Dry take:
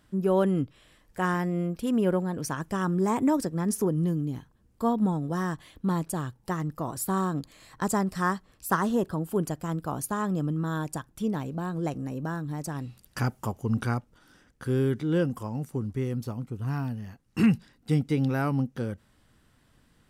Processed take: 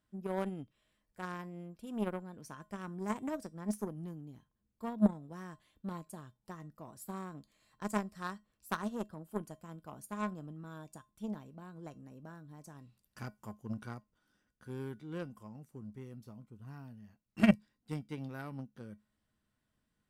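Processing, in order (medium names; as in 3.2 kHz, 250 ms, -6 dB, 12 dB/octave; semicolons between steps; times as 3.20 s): feedback comb 210 Hz, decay 0.22 s, harmonics odd, mix 70%; Chebyshev shaper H 3 -10 dB, 5 -34 dB, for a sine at -17.5 dBFS; trim +6.5 dB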